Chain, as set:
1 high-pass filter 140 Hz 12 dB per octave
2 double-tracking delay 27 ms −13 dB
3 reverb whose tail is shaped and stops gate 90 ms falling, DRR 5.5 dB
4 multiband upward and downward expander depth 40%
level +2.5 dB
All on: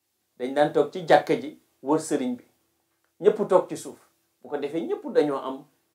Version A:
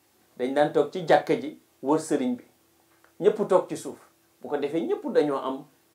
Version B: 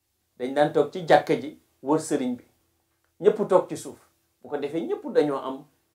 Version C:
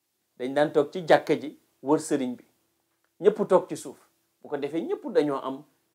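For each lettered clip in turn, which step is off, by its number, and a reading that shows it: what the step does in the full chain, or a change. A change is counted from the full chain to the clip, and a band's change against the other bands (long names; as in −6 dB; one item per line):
4, 250 Hz band +1.5 dB
1, 125 Hz band +2.0 dB
3, change in momentary loudness spread −1 LU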